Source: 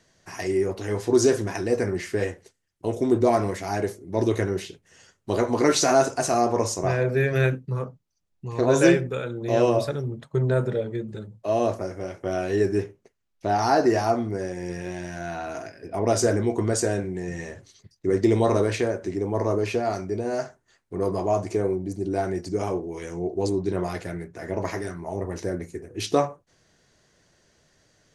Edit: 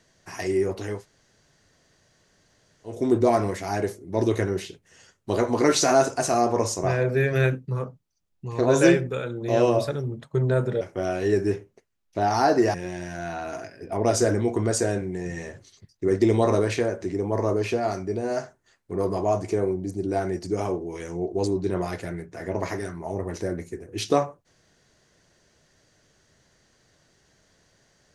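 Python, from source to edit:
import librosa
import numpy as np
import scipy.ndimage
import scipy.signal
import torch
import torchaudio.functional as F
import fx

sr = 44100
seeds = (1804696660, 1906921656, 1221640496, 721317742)

y = fx.edit(x, sr, fx.room_tone_fill(start_s=0.95, length_s=1.99, crossfade_s=0.24),
    fx.cut(start_s=10.81, length_s=1.28),
    fx.cut(start_s=14.02, length_s=0.74), tone=tone)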